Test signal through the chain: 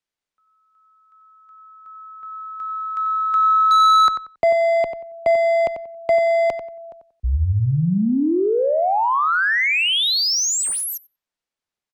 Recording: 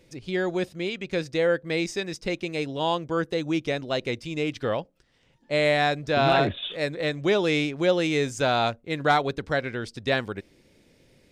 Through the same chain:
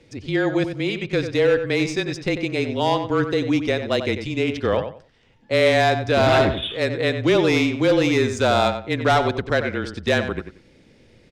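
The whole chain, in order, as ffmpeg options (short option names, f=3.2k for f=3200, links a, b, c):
-filter_complex "[0:a]acontrast=41,asoftclip=type=hard:threshold=-12.5dB,afreqshift=-25,asplit=2[a][b];[b]adelay=92,lowpass=f=3.3k:p=1,volume=-8.5dB,asplit=2[c][d];[d]adelay=92,lowpass=f=3.3k:p=1,volume=0.23,asplit=2[e][f];[f]adelay=92,lowpass=f=3.3k:p=1,volume=0.23[g];[a][c][e][g]amix=inputs=4:normalize=0,adynamicsmooth=sensitivity=1.5:basefreq=7.3k"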